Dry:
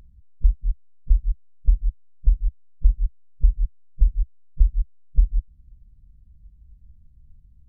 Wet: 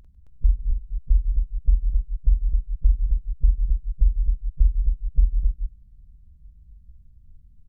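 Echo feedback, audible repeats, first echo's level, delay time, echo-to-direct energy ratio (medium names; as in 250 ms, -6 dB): no regular repeats, 3, -6.5 dB, 46 ms, -1.5 dB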